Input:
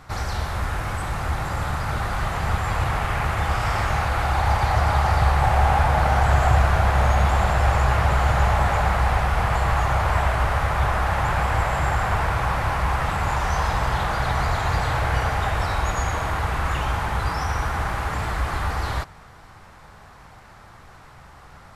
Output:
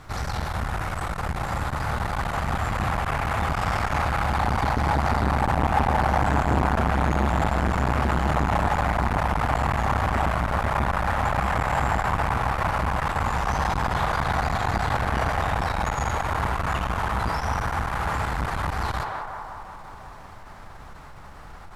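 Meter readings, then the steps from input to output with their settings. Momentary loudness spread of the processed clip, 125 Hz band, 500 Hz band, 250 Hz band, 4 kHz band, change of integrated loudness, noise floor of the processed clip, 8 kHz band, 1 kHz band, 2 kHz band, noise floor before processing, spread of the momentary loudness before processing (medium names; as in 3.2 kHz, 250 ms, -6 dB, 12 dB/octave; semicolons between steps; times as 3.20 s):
7 LU, -4.0 dB, -1.5 dB, +3.5 dB, -3.5 dB, -2.5 dB, -42 dBFS, -3.5 dB, -1.0 dB, -2.0 dB, -46 dBFS, 7 LU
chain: added noise brown -44 dBFS; band-passed feedback delay 182 ms, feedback 72%, band-pass 890 Hz, level -3 dB; transformer saturation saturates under 500 Hz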